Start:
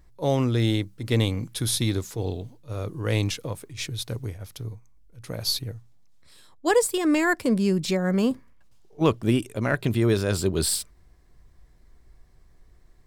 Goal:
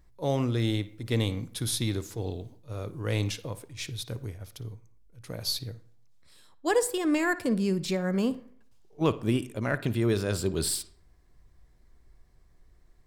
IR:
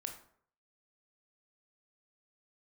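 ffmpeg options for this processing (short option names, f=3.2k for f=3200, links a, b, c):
-filter_complex "[0:a]asplit=2[a][b];[1:a]atrim=start_sample=2205,lowpass=5.1k,adelay=57[c];[b][c]afir=irnorm=-1:irlink=0,volume=-12.5dB[d];[a][d]amix=inputs=2:normalize=0,volume=-4.5dB"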